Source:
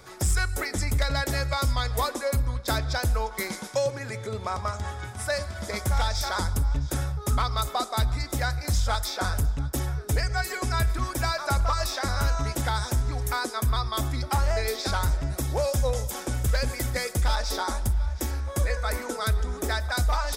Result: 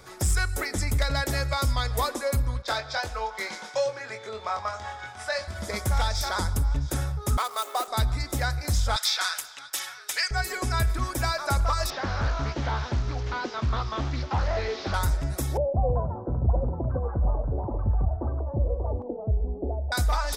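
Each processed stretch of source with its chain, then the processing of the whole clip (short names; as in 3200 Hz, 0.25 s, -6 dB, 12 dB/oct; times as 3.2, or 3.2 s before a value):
2.62–5.48 three-band isolator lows -15 dB, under 460 Hz, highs -19 dB, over 6500 Hz + doubler 23 ms -5 dB
7.37–7.88 median filter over 9 samples + HPF 380 Hz 24 dB/oct + high shelf 7800 Hz +11.5 dB
8.96–10.31 HPF 1200 Hz + bell 3300 Hz +9.5 dB 2.4 oct
11.9–14.94 delta modulation 32 kbps, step -40 dBFS + HPF 51 Hz + Doppler distortion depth 0.38 ms
15.57–19.92 steep low-pass 760 Hz 48 dB/oct + echoes that change speed 0.192 s, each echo +5 st, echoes 2, each echo -6 dB
whole clip: dry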